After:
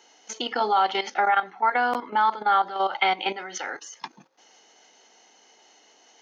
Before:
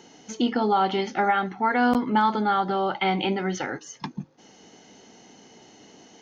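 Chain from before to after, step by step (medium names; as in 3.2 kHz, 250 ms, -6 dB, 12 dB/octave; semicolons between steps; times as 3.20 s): 1.18–2.67 s: treble shelf 3.3 kHz -8 dB; level held to a coarse grid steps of 12 dB; high-pass 650 Hz 12 dB/octave; trim +6.5 dB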